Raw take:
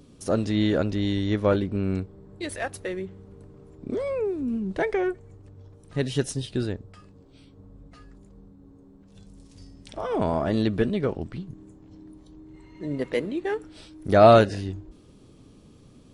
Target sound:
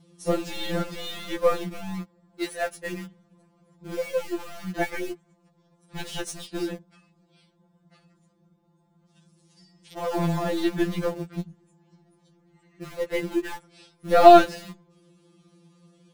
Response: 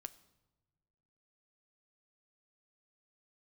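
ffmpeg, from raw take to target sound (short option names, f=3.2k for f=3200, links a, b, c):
-filter_complex "[0:a]highpass=76,aeval=exprs='0.75*(cos(1*acos(clip(val(0)/0.75,-1,1)))-cos(1*PI/2))+0.0133*(cos(7*acos(clip(val(0)/0.75,-1,1)))-cos(7*PI/2))+0.0266*(cos(8*acos(clip(val(0)/0.75,-1,1)))-cos(8*PI/2))':c=same,asplit=2[a][b];[b]acrusher=bits=4:mix=0:aa=0.000001,volume=-7.5dB[c];[a][c]amix=inputs=2:normalize=0,afftfilt=real='re*2.83*eq(mod(b,8),0)':imag='im*2.83*eq(mod(b,8),0)':win_size=2048:overlap=0.75"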